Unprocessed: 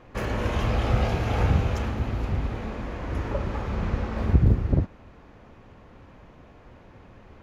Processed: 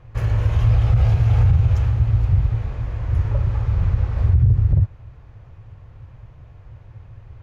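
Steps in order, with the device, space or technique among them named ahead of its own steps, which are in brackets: car stereo with a boomy subwoofer (resonant low shelf 160 Hz +11 dB, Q 3; limiter -4.5 dBFS, peak gain reduction 10.5 dB); gain -3.5 dB

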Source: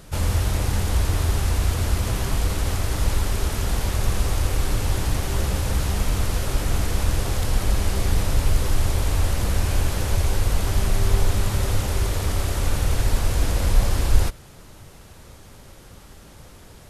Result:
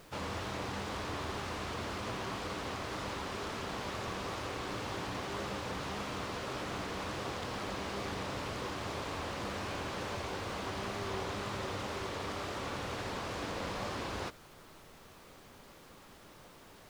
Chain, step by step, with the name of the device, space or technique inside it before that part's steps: horn gramophone (BPF 210–4400 Hz; bell 1100 Hz +4.5 dB 0.37 oct; wow and flutter; pink noise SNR 20 dB); gain -7.5 dB

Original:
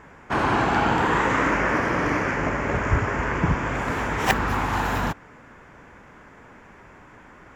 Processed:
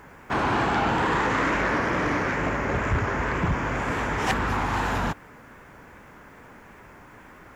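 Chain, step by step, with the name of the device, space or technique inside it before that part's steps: compact cassette (soft clip -17 dBFS, distortion -15 dB; LPF 11000 Hz; wow and flutter; white noise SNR 42 dB)

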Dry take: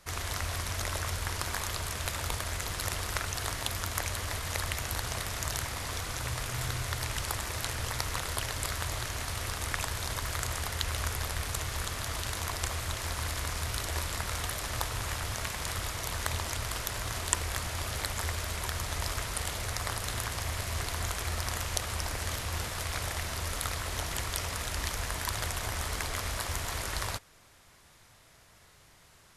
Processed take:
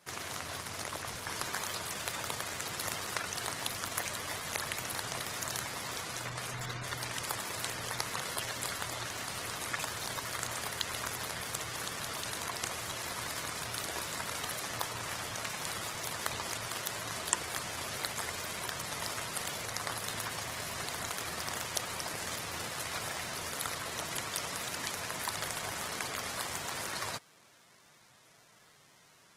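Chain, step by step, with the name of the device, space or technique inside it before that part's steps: noise-suppressed video call (HPF 130 Hz 24 dB/oct; spectral gate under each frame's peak -20 dB strong; gain -1.5 dB; Opus 16 kbps 48000 Hz)

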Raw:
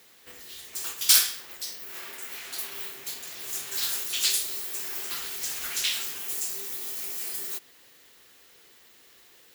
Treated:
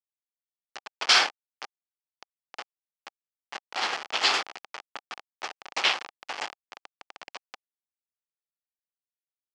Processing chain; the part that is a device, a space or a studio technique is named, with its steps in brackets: hand-held game console (bit-crush 4-bit; speaker cabinet 420–4300 Hz, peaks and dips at 800 Hz +7 dB, 1200 Hz +4 dB, 3800 Hz -8 dB); gain +8.5 dB

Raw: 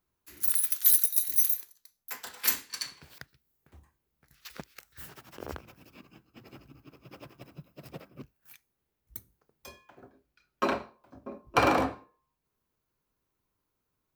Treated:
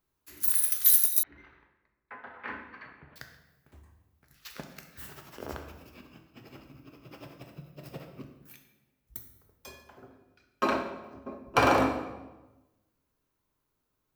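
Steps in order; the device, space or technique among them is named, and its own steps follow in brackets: bathroom (reverb RT60 1.1 s, pre-delay 4 ms, DRR 3.5 dB); 1.23–3.16 inverse Chebyshev low-pass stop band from 7700 Hz, stop band 70 dB

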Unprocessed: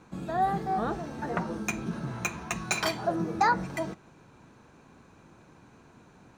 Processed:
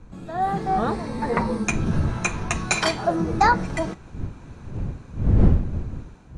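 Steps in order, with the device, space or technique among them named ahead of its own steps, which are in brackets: 0.88–1.64 ripple EQ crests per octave 0.94, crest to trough 10 dB; smartphone video outdoors (wind noise 120 Hz -31 dBFS; AGC gain up to 9 dB; gain -2 dB; AAC 48 kbps 24000 Hz)

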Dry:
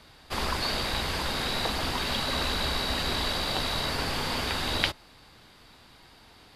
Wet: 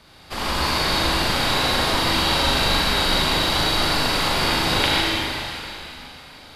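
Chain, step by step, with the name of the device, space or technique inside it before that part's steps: tunnel (flutter echo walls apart 6.8 m, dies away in 0.45 s; reverb RT60 3.1 s, pre-delay 64 ms, DRR -5.5 dB); gain +1.5 dB

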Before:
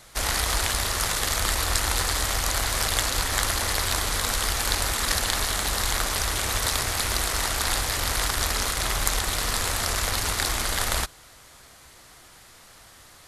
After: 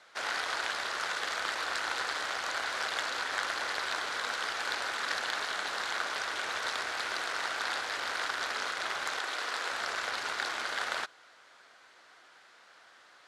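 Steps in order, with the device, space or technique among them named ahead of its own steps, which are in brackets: 9.17–9.72 HPF 250 Hz 24 dB/oct; intercom (BPF 420–4100 Hz; bell 1500 Hz +7 dB 0.31 oct; soft clip -10.5 dBFS, distortion -27 dB); gain -6 dB

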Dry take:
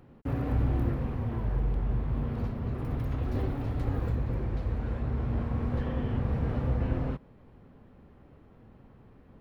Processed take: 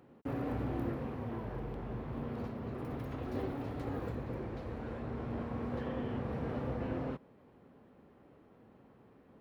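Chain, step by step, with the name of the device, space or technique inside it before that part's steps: filter by subtraction (in parallel: LPF 370 Hz 12 dB/oct + phase invert); on the sum: gain -3.5 dB

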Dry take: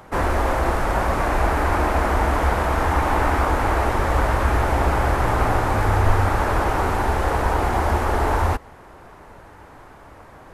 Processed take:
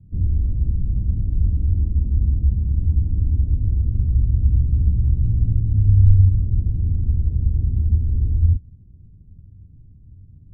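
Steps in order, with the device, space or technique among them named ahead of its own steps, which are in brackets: the neighbour's flat through the wall (LPF 180 Hz 24 dB/oct; bell 94 Hz +6.5 dB 0.58 oct); gain +3 dB

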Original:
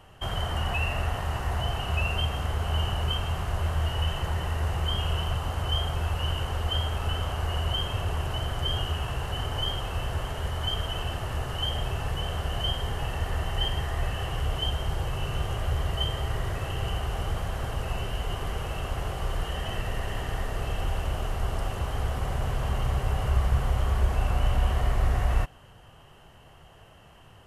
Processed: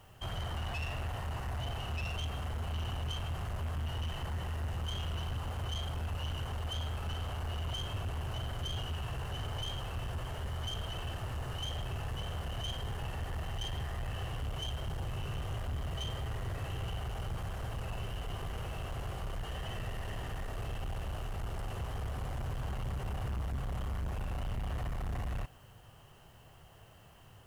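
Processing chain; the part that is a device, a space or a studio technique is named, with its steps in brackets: open-reel tape (soft clip -28 dBFS, distortion -9 dB; bell 110 Hz +4.5 dB 0.82 oct; white noise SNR 34 dB); gain -6 dB

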